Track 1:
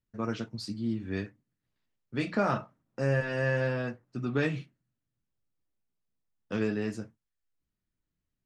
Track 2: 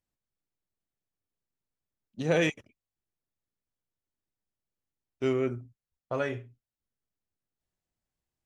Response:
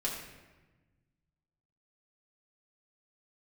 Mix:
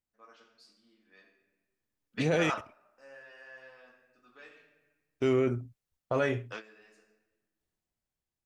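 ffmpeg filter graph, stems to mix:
-filter_complex "[0:a]highpass=740,volume=-1dB,asplit=2[a][b];[b]volume=-21.5dB[c];[1:a]dynaudnorm=f=570:g=5:m=9dB,volume=-5dB,asplit=2[d][e];[e]apad=whole_len=372671[f];[a][f]sidechaingate=range=-30dB:threshold=-55dB:ratio=16:detection=peak[g];[2:a]atrim=start_sample=2205[h];[c][h]afir=irnorm=-1:irlink=0[i];[g][d][i]amix=inputs=3:normalize=0,alimiter=limit=-18dB:level=0:latency=1:release=12"

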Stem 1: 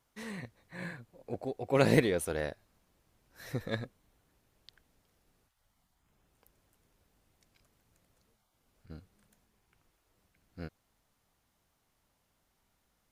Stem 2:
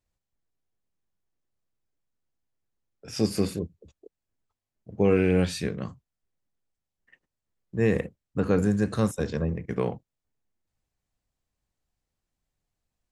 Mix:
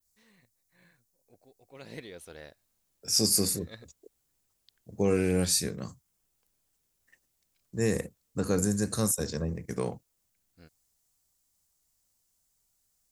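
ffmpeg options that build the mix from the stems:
-filter_complex "[0:a]equalizer=f=4.1k:t=o:w=1.8:g=8,volume=-13.5dB,afade=t=in:st=1.84:d=0.44:silence=0.316228[a];[1:a]adynamicequalizer=threshold=0.00224:dfrequency=7300:dqfactor=0.72:tfrequency=7300:tqfactor=0.72:attack=5:release=100:ratio=0.375:range=2.5:mode=cutabove:tftype=bell,aexciter=amount=10.9:drive=4.2:freq=4.5k,volume=-4.5dB[b];[a][b]amix=inputs=2:normalize=0"

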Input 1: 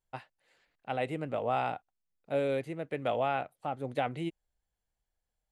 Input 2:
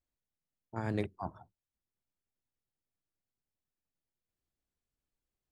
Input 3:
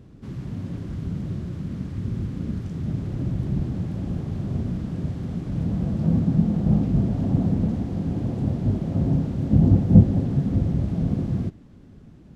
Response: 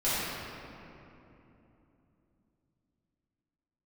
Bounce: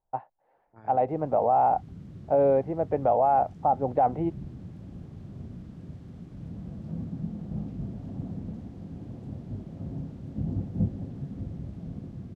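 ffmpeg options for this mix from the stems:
-filter_complex "[0:a]lowpass=f=820:t=q:w=3.6,volume=2dB[a];[1:a]lowpass=3.1k,volume=-15.5dB[b];[2:a]adelay=850,volume=-18.5dB[c];[a][b][c]amix=inputs=3:normalize=0,dynaudnorm=f=490:g=5:m=4dB,alimiter=limit=-14.5dB:level=0:latency=1:release=29"

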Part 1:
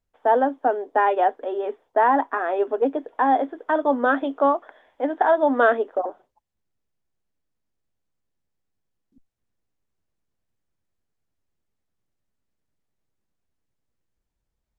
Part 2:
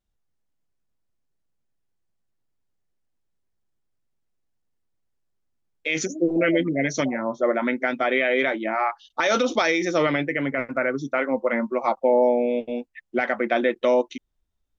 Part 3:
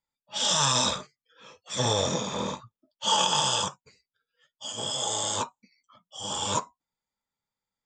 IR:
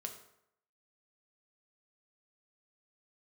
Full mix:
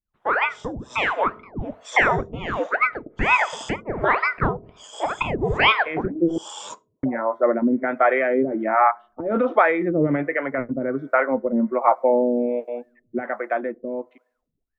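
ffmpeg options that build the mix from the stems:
-filter_complex "[0:a]aeval=exprs='val(0)*sin(2*PI*940*n/s+940*0.9/2.1*sin(2*PI*2.1*n/s))':c=same,volume=-0.5dB,asplit=3[a][b][c];[b]volume=-6.5dB[d];[1:a]lowpass=f=1.7k:w=0.5412,lowpass=f=1.7k:w=1.3066,dynaudnorm=f=350:g=17:m=11.5dB,volume=-7.5dB,asplit=3[e][f][g];[e]atrim=end=6.38,asetpts=PTS-STARTPTS,afade=t=out:st=6.376:d=0.004:c=hsin[h];[f]atrim=start=6.38:end=7.03,asetpts=PTS-STARTPTS,volume=0[i];[g]atrim=start=7.03,asetpts=PTS-STARTPTS,afade=t=in:d=0.004:c=hsin[j];[h][i][j]concat=n=3:v=0:a=1,asplit=2[k][l];[l]volume=-15.5dB[m];[2:a]highpass=270,adelay=150,volume=-10.5dB,asplit=2[n][o];[o]volume=-13.5dB[p];[c]apad=whole_len=352841[q];[n][q]sidechaincompress=threshold=-34dB:ratio=8:attack=5.7:release=210[r];[3:a]atrim=start_sample=2205[s];[d][m][p]amix=inputs=3:normalize=0[t];[t][s]afir=irnorm=-1:irlink=0[u];[a][k][r][u]amix=inputs=4:normalize=0,dynaudnorm=f=310:g=9:m=11.5dB,acrossover=split=440[v][w];[v]aeval=exprs='val(0)*(1-1/2+1/2*cos(2*PI*1.3*n/s))':c=same[x];[w]aeval=exprs='val(0)*(1-1/2-1/2*cos(2*PI*1.3*n/s))':c=same[y];[x][y]amix=inputs=2:normalize=0"

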